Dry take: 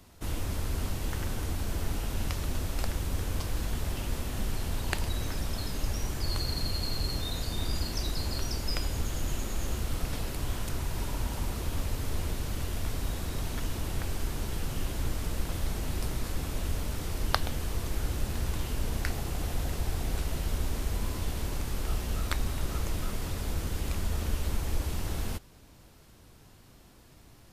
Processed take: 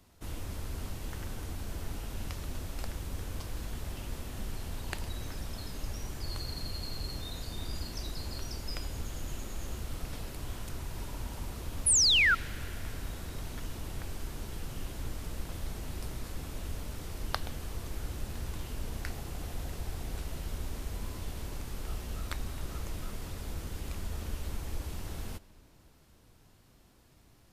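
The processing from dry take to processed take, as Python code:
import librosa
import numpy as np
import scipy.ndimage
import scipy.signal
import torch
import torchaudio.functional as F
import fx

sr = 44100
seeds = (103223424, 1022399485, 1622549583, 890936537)

y = fx.spec_paint(x, sr, seeds[0], shape='fall', start_s=11.86, length_s=0.49, low_hz=1300.0, high_hz=11000.0, level_db=-17.0)
y = fx.rev_freeverb(y, sr, rt60_s=4.3, hf_ratio=0.5, predelay_ms=30, drr_db=19.5)
y = y * 10.0 ** (-6.5 / 20.0)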